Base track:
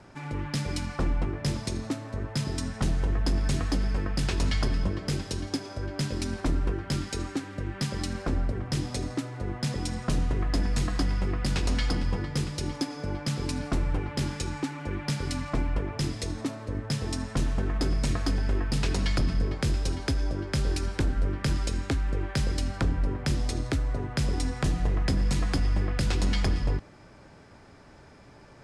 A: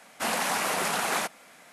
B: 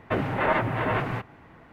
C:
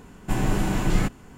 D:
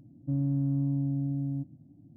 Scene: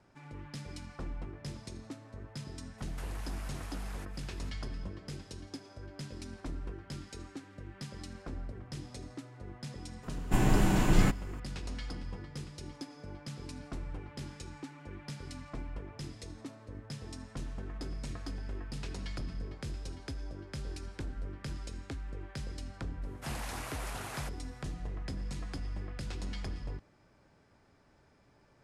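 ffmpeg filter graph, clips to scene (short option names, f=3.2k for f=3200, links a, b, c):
-filter_complex "[1:a]asplit=2[a][b];[0:a]volume=-13.5dB[c];[a]acompressor=threshold=-42dB:ratio=12:attack=23:release=120:knee=1:detection=rms,atrim=end=1.72,asetpts=PTS-STARTPTS,volume=-7dB,afade=t=in:d=0.004:c=hsin,afade=t=out:st=1.716:d=0.004:c=hsin,adelay=2780[d];[3:a]atrim=end=1.37,asetpts=PTS-STARTPTS,volume=-2.5dB,afade=t=in:d=0.004:c=hsin,afade=t=out:st=1.366:d=0.004:c=hsin,adelay=10030[e];[b]atrim=end=1.72,asetpts=PTS-STARTPTS,volume=-15dB,afade=t=in:d=0.004:c=hsin,afade=t=out:st=1.716:d=0.004:c=hsin,adelay=23020[f];[c][d][e][f]amix=inputs=4:normalize=0"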